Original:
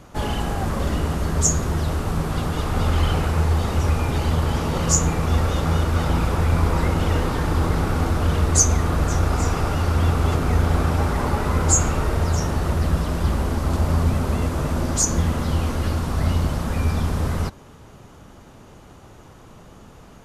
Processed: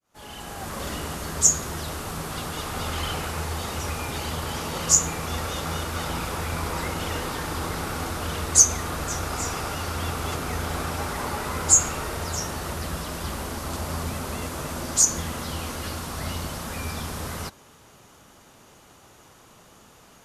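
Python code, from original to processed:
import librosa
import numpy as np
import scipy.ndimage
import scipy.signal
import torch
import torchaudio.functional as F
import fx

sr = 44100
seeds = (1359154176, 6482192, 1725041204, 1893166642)

y = fx.fade_in_head(x, sr, length_s=0.85)
y = fx.tilt_eq(y, sr, slope=2.5)
y = F.gain(torch.from_numpy(y), -4.0).numpy()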